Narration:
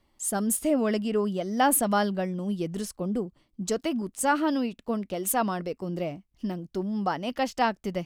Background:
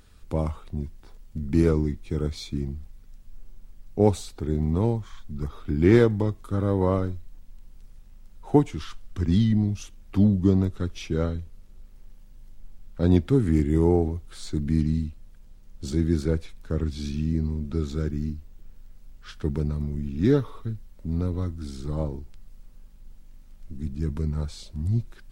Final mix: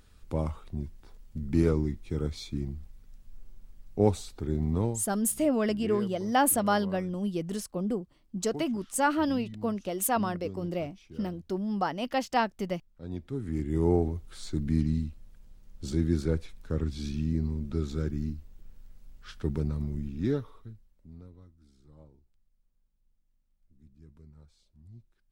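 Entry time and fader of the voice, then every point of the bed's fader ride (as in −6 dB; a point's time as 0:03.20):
4.75 s, −1.5 dB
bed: 0:04.81 −4 dB
0:05.26 −21 dB
0:12.99 −21 dB
0:13.93 −3.5 dB
0:19.97 −3.5 dB
0:21.48 −26 dB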